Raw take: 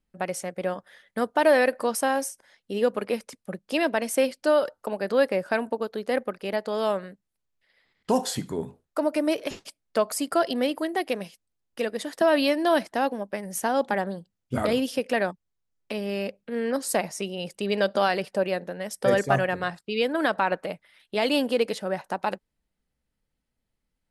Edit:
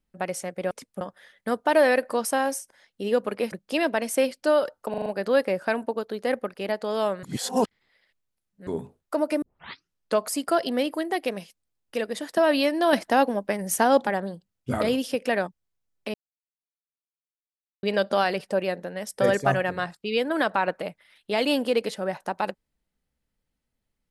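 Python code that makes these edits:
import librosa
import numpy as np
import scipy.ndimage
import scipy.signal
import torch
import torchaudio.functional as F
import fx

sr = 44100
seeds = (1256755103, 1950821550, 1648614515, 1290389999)

y = fx.edit(x, sr, fx.move(start_s=3.22, length_s=0.3, to_s=0.71),
    fx.stutter(start_s=4.9, slice_s=0.04, count=5),
    fx.reverse_span(start_s=7.07, length_s=1.44),
    fx.tape_start(start_s=9.26, length_s=0.74),
    fx.clip_gain(start_s=12.77, length_s=1.13, db=5.0),
    fx.silence(start_s=15.98, length_s=1.69), tone=tone)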